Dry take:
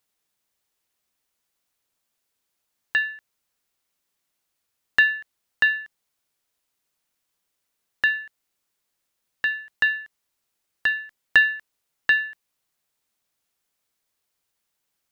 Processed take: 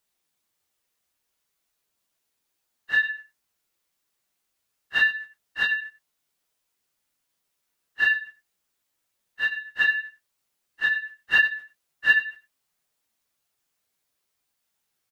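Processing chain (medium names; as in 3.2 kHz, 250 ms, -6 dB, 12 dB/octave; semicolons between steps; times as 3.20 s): phase randomisation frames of 100 ms; on a send: delay 94 ms -15.5 dB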